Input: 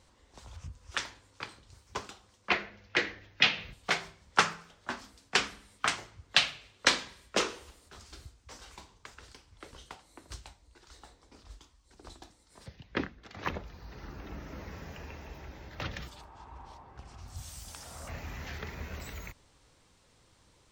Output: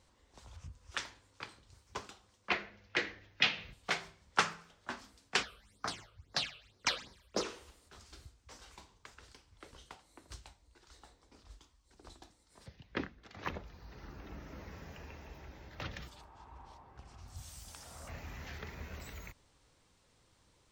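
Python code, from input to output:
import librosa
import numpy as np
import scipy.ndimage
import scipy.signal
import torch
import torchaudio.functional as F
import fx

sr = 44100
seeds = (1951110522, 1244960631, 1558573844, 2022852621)

y = fx.phaser_stages(x, sr, stages=8, low_hz=240.0, high_hz=2900.0, hz=fx.line((5.42, 1.4), (7.44, 3.8)), feedback_pct=35, at=(5.42, 7.44), fade=0.02)
y = F.gain(torch.from_numpy(y), -5.0).numpy()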